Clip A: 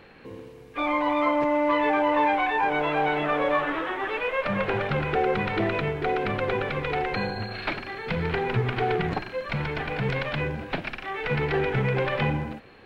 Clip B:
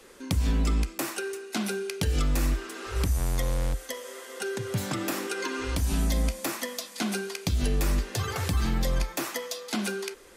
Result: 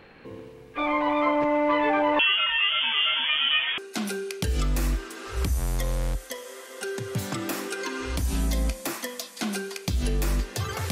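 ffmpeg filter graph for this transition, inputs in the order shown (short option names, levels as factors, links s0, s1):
-filter_complex "[0:a]asettb=1/sr,asplit=3[s0][s1][s2];[s0]atrim=end=2.194[s3];[s1]atrim=start=2.19:end=3.78,asetpts=PTS-STARTPTS,afade=t=in:d=0.004:c=qsin,afade=t=out:st=1.586:d=0.004:c=qsin,lowpass=f=3100:t=q:w=0.5098,lowpass=f=3100:t=q:w=0.6013,lowpass=f=3100:t=q:w=0.9,lowpass=f=3100:t=q:w=2.563,afreqshift=-3600[s4];[s2]atrim=start=3.776[s5];[s3][s4]acrossfade=d=0.004:c1=hsin:c2=qsin[s6];[s6][s5]acrossfade=d=0.004:c1=qsin:c2=hsin,apad=whole_dur=10.91,atrim=end=10.91,atrim=end=3.782[s7];[1:a]atrim=start=1.368:end=8.5[s8];[s7][s8]acrossfade=d=0.004:c1=hsin:c2=hsin"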